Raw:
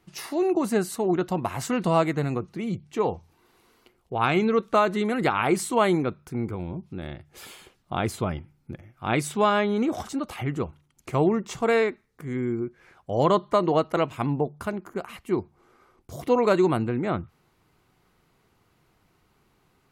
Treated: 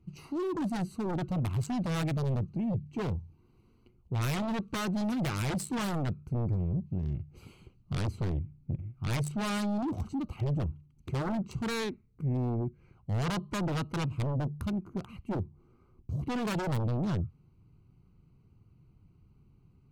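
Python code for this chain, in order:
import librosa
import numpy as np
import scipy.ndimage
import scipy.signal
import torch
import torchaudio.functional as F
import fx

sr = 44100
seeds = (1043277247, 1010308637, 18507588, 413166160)

p1 = fx.wiener(x, sr, points=25)
p2 = fx.tone_stack(p1, sr, knobs='6-0-2')
p3 = fx.fold_sine(p2, sr, drive_db=18, ceiling_db=-28.0)
p4 = p2 + (p3 * librosa.db_to_amplitude(-8.5))
p5 = fx.peak_eq(p4, sr, hz=120.0, db=5.0, octaves=1.5)
y = p5 * librosa.db_to_amplitude(4.0)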